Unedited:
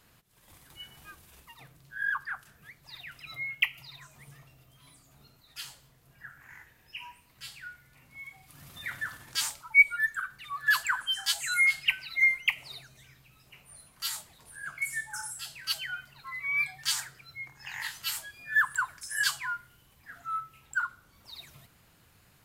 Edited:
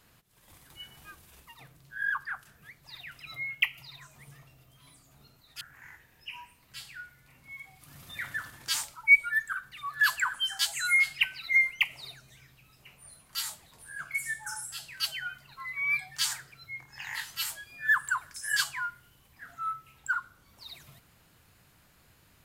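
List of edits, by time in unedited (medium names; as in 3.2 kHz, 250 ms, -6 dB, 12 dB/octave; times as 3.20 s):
5.61–6.28 s: delete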